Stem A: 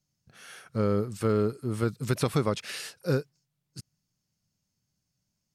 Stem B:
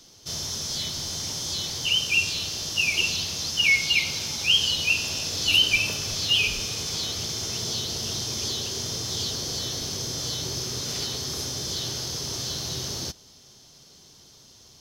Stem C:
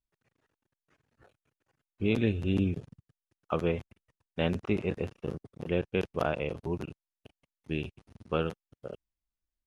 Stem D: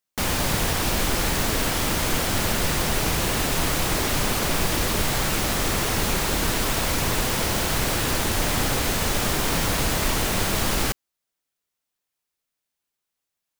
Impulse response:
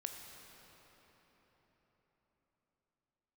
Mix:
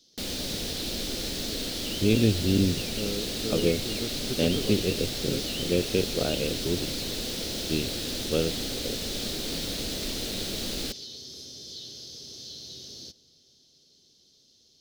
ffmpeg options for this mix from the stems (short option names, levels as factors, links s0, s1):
-filter_complex "[0:a]adelay=2200,volume=0.266[s0];[1:a]acompressor=threshold=0.0282:ratio=2,volume=0.133,asplit=2[s1][s2];[s2]volume=0.266[s3];[2:a]equalizer=f=110:t=o:w=0.52:g=10,volume=0.891[s4];[3:a]volume=0.237[s5];[4:a]atrim=start_sample=2205[s6];[s3][s6]afir=irnorm=-1:irlink=0[s7];[s0][s1][s4][s5][s7]amix=inputs=5:normalize=0,equalizer=f=125:t=o:w=1:g=-3,equalizer=f=250:t=o:w=1:g=7,equalizer=f=500:t=o:w=1:g=6,equalizer=f=1000:t=o:w=1:g=-12,equalizer=f=2000:t=o:w=1:g=-3,equalizer=f=4000:t=o:w=1:g=12"